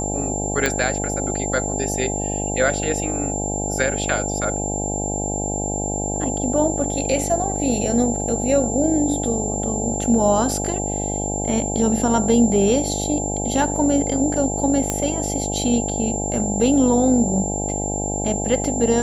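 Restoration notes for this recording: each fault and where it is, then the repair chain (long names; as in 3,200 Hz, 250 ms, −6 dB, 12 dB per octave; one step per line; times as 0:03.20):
mains buzz 50 Hz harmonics 17 −26 dBFS
whistle 7,300 Hz −26 dBFS
0:00.66: click −4 dBFS
0:14.90: click −7 dBFS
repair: click removal
notch filter 7,300 Hz, Q 30
hum removal 50 Hz, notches 17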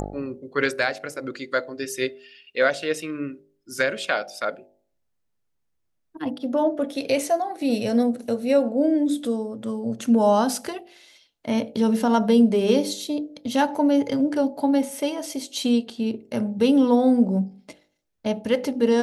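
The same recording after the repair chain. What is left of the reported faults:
none of them is left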